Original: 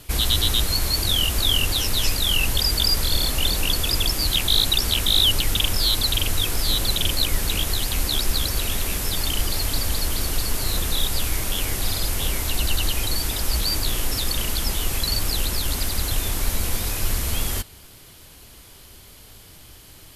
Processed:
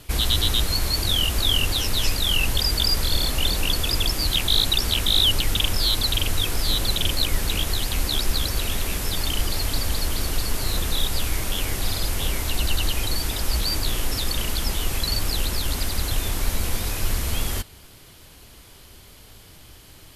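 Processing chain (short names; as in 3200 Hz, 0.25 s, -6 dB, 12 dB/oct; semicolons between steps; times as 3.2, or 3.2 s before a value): high shelf 6600 Hz -4.5 dB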